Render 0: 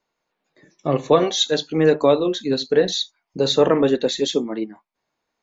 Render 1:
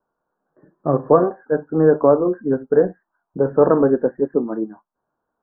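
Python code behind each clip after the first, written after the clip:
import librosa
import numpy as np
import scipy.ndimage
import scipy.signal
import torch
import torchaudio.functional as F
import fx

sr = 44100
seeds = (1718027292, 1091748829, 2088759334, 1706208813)

y = scipy.signal.sosfilt(scipy.signal.butter(16, 1600.0, 'lowpass', fs=sr, output='sos'), x)
y = F.gain(torch.from_numpy(y), 2.0).numpy()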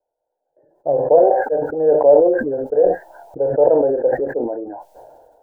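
y = fx.band_shelf(x, sr, hz=670.0, db=11.5, octaves=1.1)
y = fx.fixed_phaser(y, sr, hz=490.0, stages=4)
y = fx.sustainer(y, sr, db_per_s=35.0)
y = F.gain(torch.from_numpy(y), -7.5).numpy()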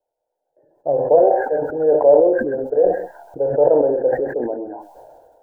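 y = x + 10.0 ** (-11.5 / 20.0) * np.pad(x, (int(130 * sr / 1000.0), 0))[:len(x)]
y = F.gain(torch.from_numpy(y), -1.0).numpy()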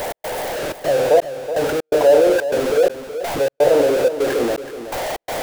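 y = x + 0.5 * 10.0 ** (-16.5 / 20.0) * np.sign(x)
y = fx.step_gate(y, sr, bpm=125, pattern='x.xxxx.xxx...x', floor_db=-60.0, edge_ms=4.5)
y = y + 10.0 ** (-11.5 / 20.0) * np.pad(y, (int(374 * sr / 1000.0), 0))[:len(y)]
y = F.gain(torch.from_numpy(y), -2.0).numpy()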